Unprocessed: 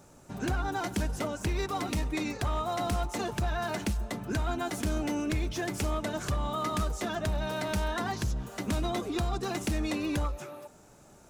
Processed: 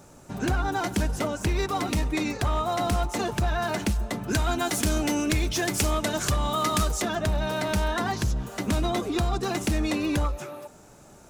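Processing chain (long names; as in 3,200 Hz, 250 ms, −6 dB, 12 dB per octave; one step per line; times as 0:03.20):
0:04.28–0:07.02: high-shelf EQ 2,700 Hz +8 dB
level +5 dB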